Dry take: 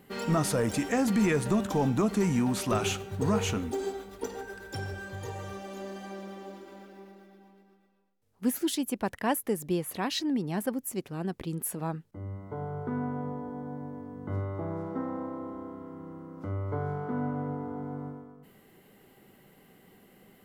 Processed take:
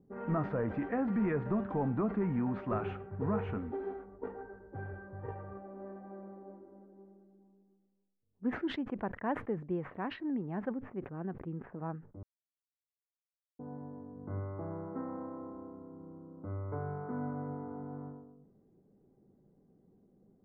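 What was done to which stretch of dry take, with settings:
5.18–5.62 transient shaper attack +11 dB, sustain -2 dB
12.23–13.59 mute
whole clip: LPF 1800 Hz 24 dB/oct; low-pass opened by the level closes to 360 Hz, open at -26 dBFS; sustainer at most 140 dB/s; gain -6 dB

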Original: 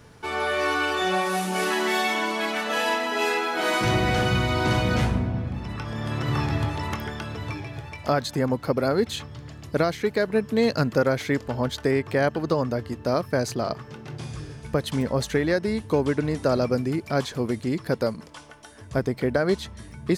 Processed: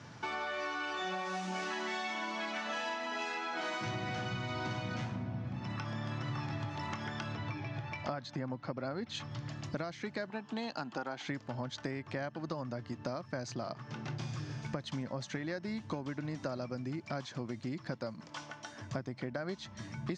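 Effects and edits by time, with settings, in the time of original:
7.35–9.15 air absorption 97 m
10.3–11.28 speaker cabinet 270–8500 Hz, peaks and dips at 550 Hz -8 dB, 820 Hz +10 dB, 2100 Hz -6 dB, 3000 Hz +5 dB, 5600 Hz -5 dB
whole clip: elliptic band-pass 110–6400 Hz, stop band 40 dB; bell 440 Hz -12 dB 0.3 oct; compressor 6:1, threshold -37 dBFS; gain +1 dB

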